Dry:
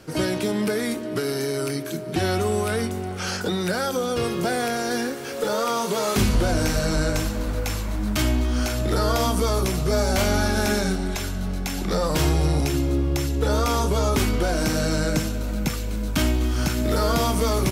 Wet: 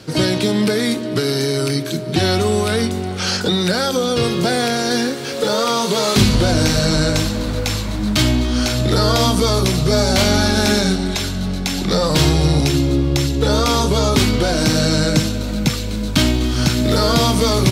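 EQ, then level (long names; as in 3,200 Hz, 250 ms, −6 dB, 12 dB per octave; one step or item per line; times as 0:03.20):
graphic EQ with 10 bands 125 Hz +10 dB, 250 Hz +5 dB, 500 Hz +4 dB, 1,000 Hz +3 dB, 2,000 Hz +3 dB, 4,000 Hz +12 dB, 8,000 Hz +4 dB
0.0 dB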